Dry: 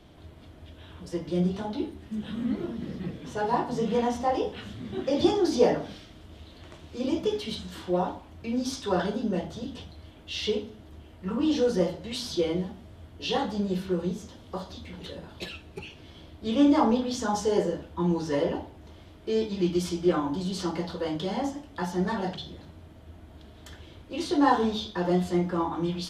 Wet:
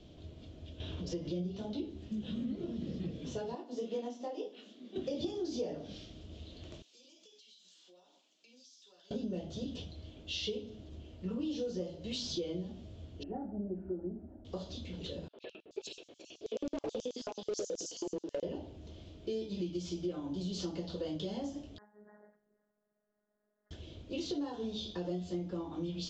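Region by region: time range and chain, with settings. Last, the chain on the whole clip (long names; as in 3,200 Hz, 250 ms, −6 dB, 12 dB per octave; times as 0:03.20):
0:00.80–0:01.58: parametric band 8,200 Hz −10.5 dB 0.27 octaves + upward compression, threshold −29 dBFS
0:03.55–0:04.96: Chebyshev high-pass filter 240 Hz, order 4 + expander for the loud parts, over −38 dBFS
0:06.82–0:09.11: Butterworth high-pass 180 Hz + first difference + downward compressor 12 to 1, threshold −55 dBFS
0:13.23–0:14.45: low-pass filter 1,200 Hz 24 dB per octave + phaser with its sweep stopped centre 720 Hz, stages 8
0:15.28–0:18.43: three-band delay without the direct sound mids, lows, highs 80/430 ms, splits 320/2,700 Hz + auto-filter high-pass square 9.3 Hz 410–6,400 Hz + hard clipping −22 dBFS
0:21.78–0:23.71: Butterworth low-pass 1,900 Hz 96 dB per octave + first difference + phases set to zero 209 Hz
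whole clip: downward compressor 6 to 1, threshold −33 dBFS; Butterworth low-pass 7,500 Hz 96 dB per octave; flat-topped bell 1,300 Hz −10.5 dB; level −1.5 dB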